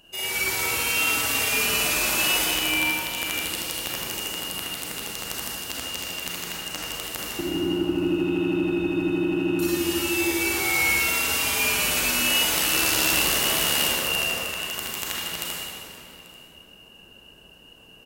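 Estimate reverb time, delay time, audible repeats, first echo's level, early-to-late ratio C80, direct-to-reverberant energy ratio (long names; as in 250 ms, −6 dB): 2.9 s, 838 ms, 1, −21.5 dB, −2.0 dB, −5.5 dB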